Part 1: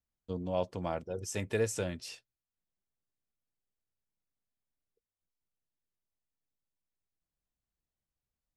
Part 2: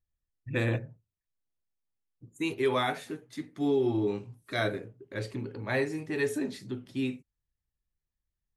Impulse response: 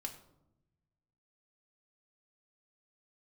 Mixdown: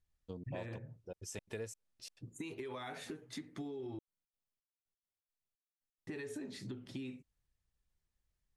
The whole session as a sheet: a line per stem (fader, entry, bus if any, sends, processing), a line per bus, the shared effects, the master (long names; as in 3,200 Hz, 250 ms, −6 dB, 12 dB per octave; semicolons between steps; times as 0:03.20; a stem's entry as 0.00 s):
−5.0 dB, 0.00 s, no send, gate pattern ".x.xx.xxx.." 173 BPM −60 dB
+2.5 dB, 0.00 s, muted 0:03.99–0:06.07, no send, low-pass filter 9,900 Hz 12 dB per octave; brickwall limiter −23.5 dBFS, peak gain reduction 7.5 dB; downward compressor 6 to 1, threshold −39 dBFS, peak gain reduction 11.5 dB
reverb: not used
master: downward compressor 2.5 to 1, threshold −43 dBFS, peak gain reduction 9 dB